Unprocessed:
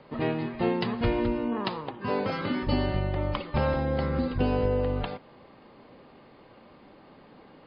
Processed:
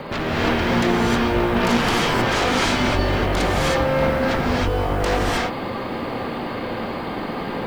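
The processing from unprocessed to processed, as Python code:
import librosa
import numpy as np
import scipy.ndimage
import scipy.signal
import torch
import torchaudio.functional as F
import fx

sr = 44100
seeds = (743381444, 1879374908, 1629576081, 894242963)

y = fx.peak_eq(x, sr, hz=1600.0, db=2.0, octaves=1.5)
y = fx.over_compress(y, sr, threshold_db=-33.0, ratio=-1.0)
y = fx.fold_sine(y, sr, drive_db=19, ceiling_db=-13.5)
y = fx.quant_float(y, sr, bits=4)
y = fx.rev_gated(y, sr, seeds[0], gate_ms=340, shape='rising', drr_db=-4.5)
y = y * librosa.db_to_amplitude(-8.5)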